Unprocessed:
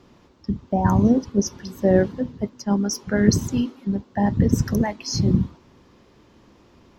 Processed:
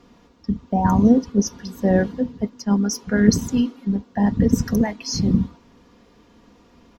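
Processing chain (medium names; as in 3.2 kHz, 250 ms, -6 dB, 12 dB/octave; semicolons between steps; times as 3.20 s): comb 4.2 ms, depth 49%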